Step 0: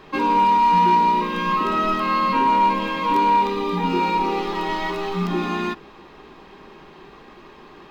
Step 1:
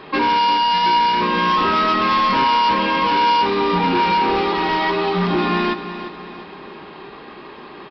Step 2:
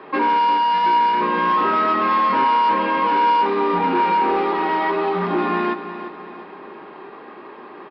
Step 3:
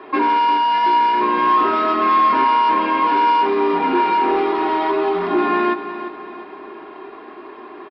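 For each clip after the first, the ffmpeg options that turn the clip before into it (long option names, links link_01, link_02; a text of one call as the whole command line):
ffmpeg -i in.wav -af "highpass=frequency=150:poles=1,aresample=11025,asoftclip=type=hard:threshold=-22.5dB,aresample=44100,aecho=1:1:349|698|1047|1396:0.266|0.114|0.0492|0.0212,volume=7.5dB" out.wav
ffmpeg -i in.wav -filter_complex "[0:a]acrossover=split=210 2200:gain=0.141 1 0.158[link_01][link_02][link_03];[link_01][link_02][link_03]amix=inputs=3:normalize=0" out.wav
ffmpeg -i in.wav -af "aecho=1:1:2.9:0.61" out.wav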